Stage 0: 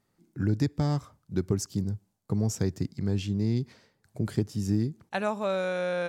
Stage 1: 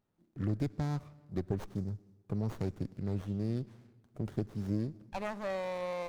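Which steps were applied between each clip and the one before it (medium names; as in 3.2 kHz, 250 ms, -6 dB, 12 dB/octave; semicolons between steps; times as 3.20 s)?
on a send at -21 dB: reverberation RT60 1.6 s, pre-delay 45 ms; on the sum: sliding maximum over 17 samples; trim -6.5 dB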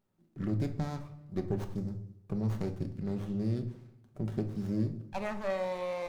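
simulated room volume 570 m³, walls furnished, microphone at 1.1 m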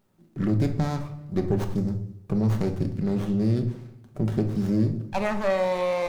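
hum notches 50/100 Hz; in parallel at -2 dB: peak limiter -30 dBFS, peak gain reduction 9.5 dB; on the sum: trim +6 dB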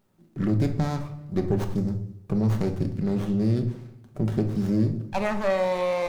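no audible change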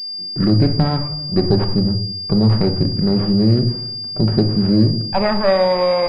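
class-D stage that switches slowly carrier 4.8 kHz; trim +9 dB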